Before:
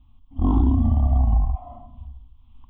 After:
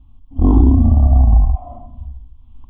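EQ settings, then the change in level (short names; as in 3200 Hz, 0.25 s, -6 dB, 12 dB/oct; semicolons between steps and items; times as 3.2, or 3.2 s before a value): low shelf 170 Hz +10 dB; bell 450 Hz +12.5 dB 1.3 oct; -1.0 dB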